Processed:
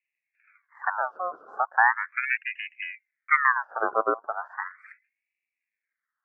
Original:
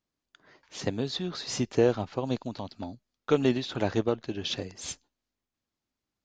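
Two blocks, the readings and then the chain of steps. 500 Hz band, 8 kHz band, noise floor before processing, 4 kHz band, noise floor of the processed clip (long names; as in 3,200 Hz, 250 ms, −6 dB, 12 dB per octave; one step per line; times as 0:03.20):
−6.0 dB, below −40 dB, below −85 dBFS, −15.0 dB, below −85 dBFS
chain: elliptic low-pass filter 570 Hz, stop band 50 dB
ring modulator whose carrier an LFO sweeps 1,600 Hz, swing 45%, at 0.37 Hz
level +6 dB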